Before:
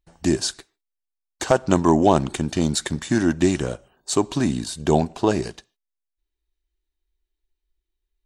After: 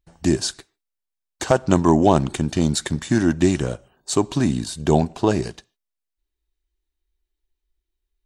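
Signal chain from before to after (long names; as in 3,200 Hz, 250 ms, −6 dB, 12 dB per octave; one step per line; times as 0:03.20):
parametric band 110 Hz +4 dB 1.8 octaves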